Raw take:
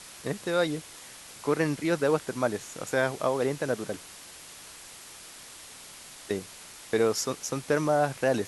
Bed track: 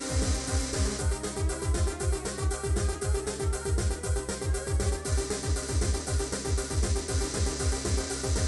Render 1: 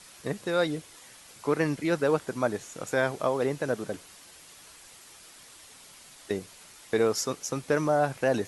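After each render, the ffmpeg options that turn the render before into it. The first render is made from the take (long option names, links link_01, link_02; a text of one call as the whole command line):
ffmpeg -i in.wav -af "afftdn=noise_reduction=6:noise_floor=-47" out.wav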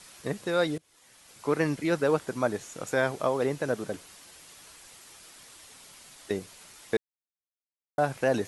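ffmpeg -i in.wav -filter_complex "[0:a]asplit=4[link_01][link_02][link_03][link_04];[link_01]atrim=end=0.78,asetpts=PTS-STARTPTS,afade=type=out:start_time=0.776:duration=0.004:curve=hsin:silence=0.0668344[link_05];[link_02]atrim=start=0.78:end=6.97,asetpts=PTS-STARTPTS,afade=type=in:duration=0.77:silence=0.0668344,afade=type=out:start_time=6.186:duration=0.004:curve=hsin[link_06];[link_03]atrim=start=6.97:end=7.98,asetpts=PTS-STARTPTS,volume=0[link_07];[link_04]atrim=start=7.98,asetpts=PTS-STARTPTS,afade=type=in:duration=0.004:curve=hsin[link_08];[link_05][link_06][link_07][link_08]concat=n=4:v=0:a=1" out.wav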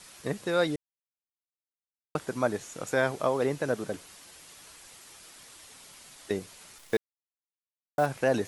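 ffmpeg -i in.wav -filter_complex "[0:a]asettb=1/sr,asplit=3[link_01][link_02][link_03];[link_01]atrim=end=6.784[link_04];[link_02]atrim=start=6.78:end=8.06,asetpts=PTS-STARTPTS,afade=type=in:duration=0.004:curve=qsin,afade=type=out:start_time=1.276:duration=0.004:curve=qsin,acrusher=bits=8:dc=4:mix=0:aa=0.000001[link_05];[link_03]atrim=start=8.056[link_06];[link_04][link_05]acrossfade=duration=0.004:curve1=hsin:curve2=qsin[link_07];[link_07][link_06]acrossfade=duration=0.004:curve1=qsin:curve2=hsin,asplit=3[link_08][link_09][link_10];[link_08]atrim=end=0.76,asetpts=PTS-STARTPTS,afade=type=out:start_time=0.756:duration=0.004:curve=hsin[link_11];[link_09]atrim=start=0.76:end=2.15,asetpts=PTS-STARTPTS,volume=0[link_12];[link_10]atrim=start=2.15,asetpts=PTS-STARTPTS,afade=type=in:duration=0.004:curve=hsin[link_13];[link_11][link_12][link_13]concat=n=3:v=0:a=1" out.wav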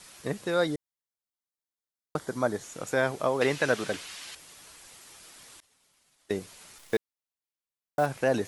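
ffmpeg -i in.wav -filter_complex "[0:a]asettb=1/sr,asplit=3[link_01][link_02][link_03];[link_01]atrim=end=0.544[link_04];[link_02]atrim=start=0.54:end=2.64,asetpts=PTS-STARTPTS,afade=type=in:duration=0.004:curve=qsin,afade=type=out:start_time=2.096:duration=0.004:curve=qsin,equalizer=frequency=2600:width=6.1:gain=-11.5[link_05];[link_03]atrim=start=2.636[link_06];[link_04][link_05]acrossfade=duration=0.004:curve1=hsin:curve2=qsin[link_07];[link_07][link_06]acrossfade=duration=0.004:curve1=qsin:curve2=hsin,asettb=1/sr,asplit=3[link_08][link_09][link_10];[link_08]atrim=end=3.414[link_11];[link_09]atrim=start=3.41:end=4.35,asetpts=PTS-STARTPTS,afade=type=in:duration=0.004:curve=qsin,afade=type=out:start_time=0.936:duration=0.004:curve=qsin,equalizer=frequency=2900:width=0.41:gain=12.5[link_12];[link_10]atrim=start=4.346[link_13];[link_11][link_12]acrossfade=duration=0.004:curve1=hsin:curve2=qsin[link_14];[link_14][link_13]acrossfade=duration=0.004:curve1=qsin:curve2=hsin,asettb=1/sr,asplit=3[link_15][link_16][link_17];[link_15]atrim=end=5.604[link_18];[link_16]atrim=start=5.6:end=6.32,asetpts=PTS-STARTPTS,afade=type=in:duration=0.004:curve=qsin,afade=type=out:start_time=0.716:duration=0.004:curve=qsin,agate=range=-33dB:threshold=-41dB:ratio=3:release=100:detection=peak[link_19];[link_17]atrim=start=6.316[link_20];[link_18][link_19]acrossfade=duration=0.004:curve1=hsin:curve2=qsin[link_21];[link_21][link_20]acrossfade=duration=0.004:curve1=qsin:curve2=hsin" out.wav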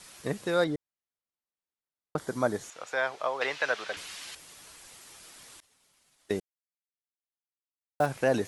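ffmpeg -i in.wav -filter_complex "[0:a]asettb=1/sr,asplit=3[link_01][link_02][link_03];[link_01]atrim=end=0.644[link_04];[link_02]atrim=start=0.64:end=2.18,asetpts=PTS-STARTPTS,afade=type=in:duration=0.004:curve=qsin,afade=type=out:start_time=1.536:duration=0.004:curve=qsin,lowpass=frequency=2300:poles=1[link_05];[link_03]atrim=start=2.176[link_06];[link_04][link_05]acrossfade=duration=0.004:curve1=hsin:curve2=qsin[link_07];[link_07][link_06]acrossfade=duration=0.004:curve1=qsin:curve2=hsin,asettb=1/sr,asplit=3[link_08][link_09][link_10];[link_08]atrim=end=2.704[link_11];[link_09]atrim=start=2.7:end=3.97,asetpts=PTS-STARTPTS,afade=type=in:duration=0.004:curve=qsin,afade=type=out:start_time=1.266:duration=0.004:curve=qsin,acrossover=split=550 5700:gain=0.0891 1 0.141[link_12][link_13][link_14];[link_12][link_13][link_14]amix=inputs=3:normalize=0[link_15];[link_10]atrim=start=3.966[link_16];[link_11][link_15]acrossfade=duration=0.004:curve1=hsin:curve2=qsin[link_17];[link_17][link_16]acrossfade=duration=0.004:curve1=qsin:curve2=hsin,asplit=3[link_18][link_19][link_20];[link_18]atrim=end=6.4,asetpts=PTS-STARTPTS,afade=type=out:start_time=6.396:duration=0.004:curve=hsin[link_21];[link_19]atrim=start=6.4:end=8,asetpts=PTS-STARTPTS,volume=0[link_22];[link_20]atrim=start=8,asetpts=PTS-STARTPTS,afade=type=in:duration=0.004:curve=hsin[link_23];[link_21][link_22][link_23]concat=n=3:v=0:a=1" out.wav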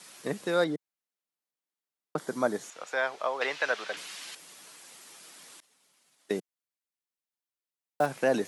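ffmpeg -i in.wav -af "highpass=frequency=160:width=0.5412,highpass=frequency=160:width=1.3066" out.wav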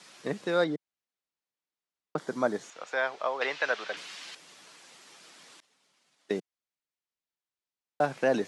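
ffmpeg -i in.wav -af "lowpass=6100" out.wav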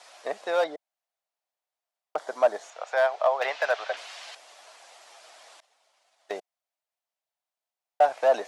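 ffmpeg -i in.wav -af "volume=21.5dB,asoftclip=hard,volume=-21.5dB,highpass=frequency=670:width_type=q:width=4.2" out.wav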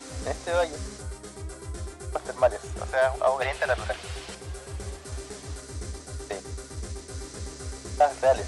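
ffmpeg -i in.wav -i bed.wav -filter_complex "[1:a]volume=-8.5dB[link_01];[0:a][link_01]amix=inputs=2:normalize=0" out.wav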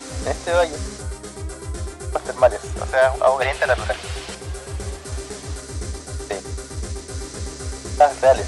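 ffmpeg -i in.wav -af "volume=7dB" out.wav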